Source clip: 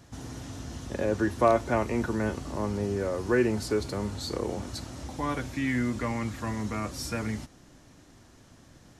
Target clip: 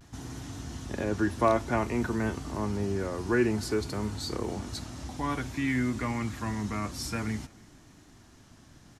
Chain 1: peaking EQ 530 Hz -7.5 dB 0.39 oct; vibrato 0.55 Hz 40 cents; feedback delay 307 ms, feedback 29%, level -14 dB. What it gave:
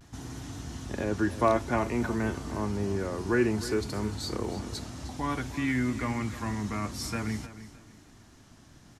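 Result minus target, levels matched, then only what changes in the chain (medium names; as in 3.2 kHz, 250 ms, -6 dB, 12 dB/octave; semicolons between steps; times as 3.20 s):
echo-to-direct +12 dB
change: feedback delay 307 ms, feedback 29%, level -26 dB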